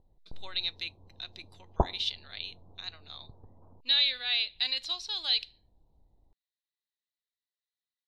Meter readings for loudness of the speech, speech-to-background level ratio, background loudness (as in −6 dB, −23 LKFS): −29.5 LKFS, 4.5 dB, −34.0 LKFS